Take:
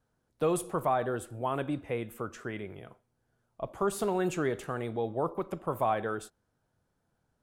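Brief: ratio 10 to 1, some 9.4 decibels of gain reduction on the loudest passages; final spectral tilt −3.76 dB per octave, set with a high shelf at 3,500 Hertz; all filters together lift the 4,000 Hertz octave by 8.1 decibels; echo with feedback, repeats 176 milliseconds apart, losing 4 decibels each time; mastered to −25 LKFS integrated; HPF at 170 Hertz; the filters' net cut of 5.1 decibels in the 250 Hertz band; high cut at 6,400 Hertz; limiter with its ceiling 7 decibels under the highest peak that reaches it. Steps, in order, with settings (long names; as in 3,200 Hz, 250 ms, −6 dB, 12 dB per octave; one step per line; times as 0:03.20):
high-pass filter 170 Hz
low-pass filter 6,400 Hz
parametric band 250 Hz −7 dB
high-shelf EQ 3,500 Hz +3.5 dB
parametric band 4,000 Hz +8.5 dB
downward compressor 10 to 1, threshold −33 dBFS
brickwall limiter −29 dBFS
repeating echo 176 ms, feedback 63%, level −4 dB
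level +14.5 dB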